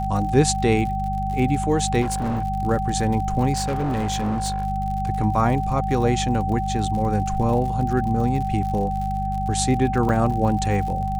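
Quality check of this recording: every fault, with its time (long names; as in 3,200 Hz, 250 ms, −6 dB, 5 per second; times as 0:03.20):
surface crackle 73 per second −30 dBFS
mains hum 50 Hz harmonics 4 −27 dBFS
whistle 770 Hz −25 dBFS
0:02.01–0:02.44: clipping −20.5 dBFS
0:03.53–0:04.64: clipping −20 dBFS
0:10.09: drop-out 2.9 ms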